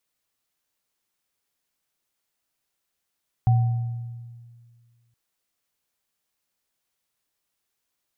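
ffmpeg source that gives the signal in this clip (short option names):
-f lavfi -i "aevalsrc='0.211*pow(10,-3*t/1.94)*sin(2*PI*118*t)+0.0447*pow(10,-3*t/1.02)*sin(2*PI*756*t)':d=1.67:s=44100"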